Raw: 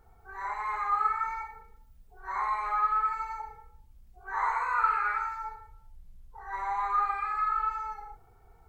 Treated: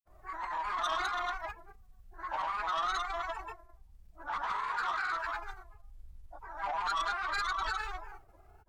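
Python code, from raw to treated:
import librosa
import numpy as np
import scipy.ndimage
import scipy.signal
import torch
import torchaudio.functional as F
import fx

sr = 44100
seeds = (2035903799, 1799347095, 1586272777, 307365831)

y = fx.dynamic_eq(x, sr, hz=210.0, q=1.0, threshold_db=-55.0, ratio=4.0, max_db=-4)
y = fx.rider(y, sr, range_db=10, speed_s=2.0)
y = fx.granulator(y, sr, seeds[0], grain_ms=100.0, per_s=20.0, spray_ms=100.0, spread_st=3)
y = 10.0 ** (-28.0 / 20.0) * np.tanh(y / 10.0 ** (-28.0 / 20.0))
y = fx.pitch_keep_formants(y, sr, semitones=-2.5)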